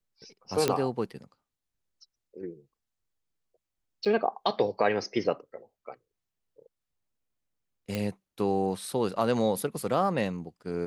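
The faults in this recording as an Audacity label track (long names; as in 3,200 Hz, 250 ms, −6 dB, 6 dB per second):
0.680000	0.680000	click −10 dBFS
4.050000	4.060000	drop-out 7 ms
7.950000	7.950000	click −17 dBFS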